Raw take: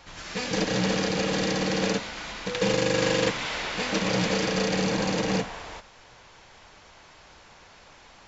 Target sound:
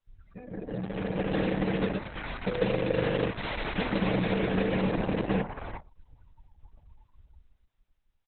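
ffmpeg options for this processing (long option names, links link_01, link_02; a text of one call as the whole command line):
ffmpeg -i in.wav -filter_complex "[0:a]acrossover=split=680|2100|5300[link_01][link_02][link_03][link_04];[link_01]acompressor=threshold=-29dB:ratio=4[link_05];[link_02]acompressor=threshold=-40dB:ratio=4[link_06];[link_03]acompressor=threshold=-44dB:ratio=4[link_07];[link_04]acompressor=threshold=-44dB:ratio=4[link_08];[link_05][link_06][link_07][link_08]amix=inputs=4:normalize=0,lowshelf=frequency=91:gain=9.5,dynaudnorm=framelen=110:gausssize=17:maxgain=11.5dB,asplit=3[link_09][link_10][link_11];[link_09]afade=type=out:start_time=1.03:duration=0.02[link_12];[link_10]equalizer=frequency=6700:width_type=o:width=0.7:gain=-5.5,afade=type=in:start_time=1.03:duration=0.02,afade=type=out:start_time=3.51:duration=0.02[link_13];[link_11]afade=type=in:start_time=3.51:duration=0.02[link_14];[link_12][link_13][link_14]amix=inputs=3:normalize=0,asplit=2[link_15][link_16];[link_16]adelay=140,highpass=300,lowpass=3400,asoftclip=type=hard:threshold=-13.5dB,volume=-27dB[link_17];[link_15][link_17]amix=inputs=2:normalize=0,afftdn=noise_reduction=34:noise_floor=-29,volume=-8.5dB" -ar 48000 -c:a libopus -b:a 6k out.opus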